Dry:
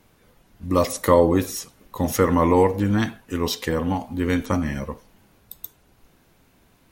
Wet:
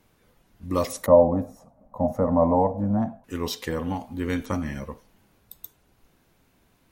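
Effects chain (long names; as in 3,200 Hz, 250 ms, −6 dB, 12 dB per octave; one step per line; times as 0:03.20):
0:01.06–0:03.24: drawn EQ curve 120 Hz 0 dB, 250 Hz +5 dB, 380 Hz −15 dB, 620 Hz +14 dB, 1,600 Hz −15 dB, 3,200 Hz −28 dB, 6,900 Hz −22 dB
level −5 dB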